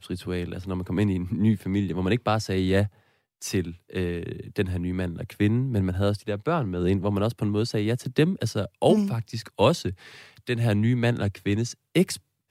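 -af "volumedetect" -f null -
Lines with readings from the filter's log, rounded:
mean_volume: -25.5 dB
max_volume: -7.1 dB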